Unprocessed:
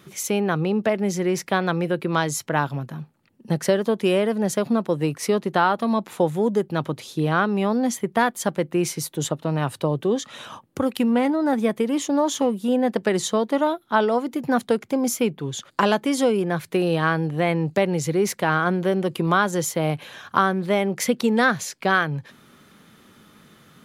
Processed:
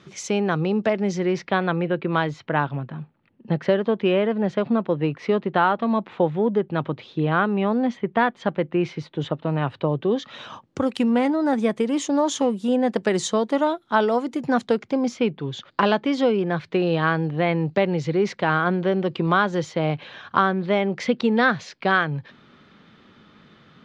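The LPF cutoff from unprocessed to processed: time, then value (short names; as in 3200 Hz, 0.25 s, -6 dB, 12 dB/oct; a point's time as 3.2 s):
LPF 24 dB/oct
0.99 s 6300 Hz
1.7 s 3400 Hz
9.89 s 3400 Hz
10.98 s 8200 Hz
14.44 s 8200 Hz
15.14 s 4500 Hz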